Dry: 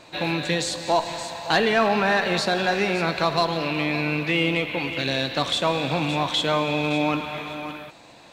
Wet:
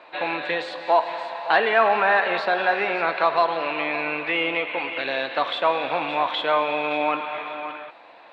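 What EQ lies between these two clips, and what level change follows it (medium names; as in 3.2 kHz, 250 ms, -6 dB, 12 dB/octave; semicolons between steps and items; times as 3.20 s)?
high-pass 650 Hz 12 dB/octave; distance through air 450 m; treble shelf 5.6 kHz -4.5 dB; +7.0 dB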